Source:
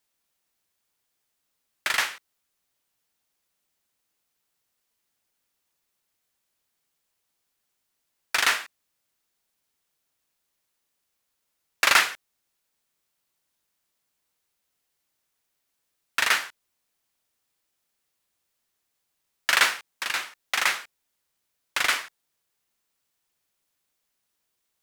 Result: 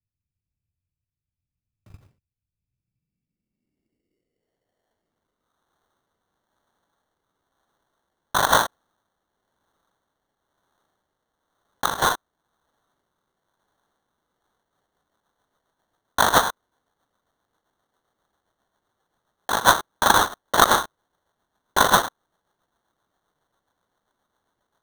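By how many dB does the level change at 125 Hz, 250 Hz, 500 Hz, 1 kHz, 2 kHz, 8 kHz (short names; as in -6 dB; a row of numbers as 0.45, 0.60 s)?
n/a, +16.5 dB, +14.0 dB, +10.5 dB, -0.5 dB, +4.0 dB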